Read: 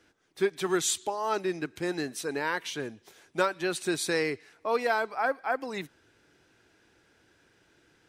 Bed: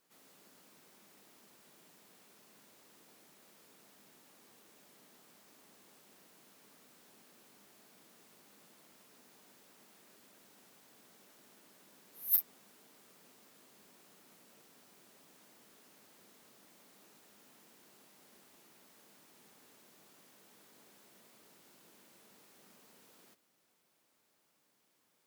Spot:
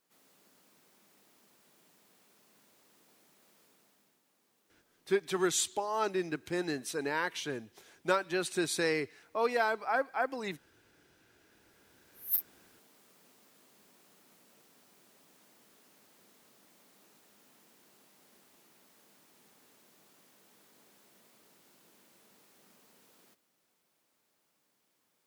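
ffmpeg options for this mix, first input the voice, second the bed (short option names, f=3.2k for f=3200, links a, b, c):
-filter_complex "[0:a]adelay=4700,volume=-2.5dB[a];[1:a]volume=7.5dB,afade=t=out:st=3.62:d=0.59:silence=0.375837,afade=t=in:st=11.33:d=1.17:silence=0.298538[b];[a][b]amix=inputs=2:normalize=0"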